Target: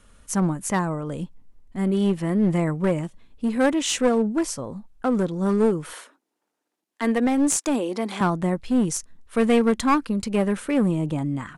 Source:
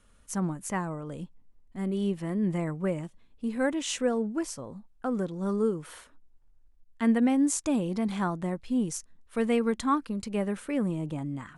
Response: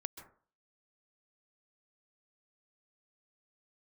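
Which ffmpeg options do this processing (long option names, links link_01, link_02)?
-filter_complex "[0:a]asettb=1/sr,asplit=3[link_01][link_02][link_03];[link_01]atrim=end=5.934[link_04];[link_02]atrim=start=5.93:end=8.21,asetpts=PTS-STARTPTS,afade=type=in:duration=0.004:curve=qsin,afade=type=out:start_time=2.276:duration=0.004:curve=qsin,highpass=frequency=280:width=0.5412,highpass=frequency=280:width=1.3066[link_05];[link_03]atrim=start=8.206[link_06];[link_04][link_05]acrossfade=duration=0.004:curve1=hsin:curve2=qsin[link_07];[link_07][link_06]acrossfade=duration=0.004:curve1=qsin:curve2=hsin,aeval=exprs='clip(val(0),-1,0.0447)':channel_layout=same,aresample=32000,aresample=44100,volume=8dB"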